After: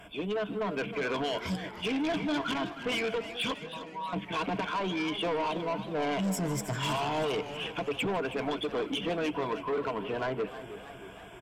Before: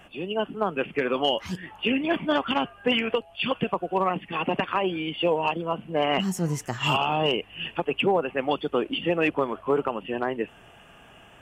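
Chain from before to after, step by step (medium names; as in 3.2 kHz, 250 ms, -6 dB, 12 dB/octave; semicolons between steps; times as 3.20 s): rippled EQ curve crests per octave 1.7, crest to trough 12 dB; peak limiter -17 dBFS, peak gain reduction 8.5 dB; 3.54–4.13 s: feedback comb 160 Hz, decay 0.42 s, harmonics all, mix 100%; saturation -27 dBFS, distortion -10 dB; on a send: delay 155 ms -19 dB; on the sum: modulated delay 317 ms, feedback 56%, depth 125 cents, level -12.5 dB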